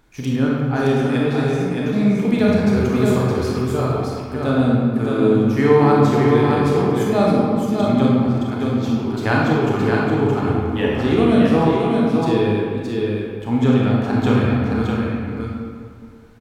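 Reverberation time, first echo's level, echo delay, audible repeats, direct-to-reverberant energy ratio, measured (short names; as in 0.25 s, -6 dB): 2.1 s, -4.0 dB, 0.619 s, 1, -6.0 dB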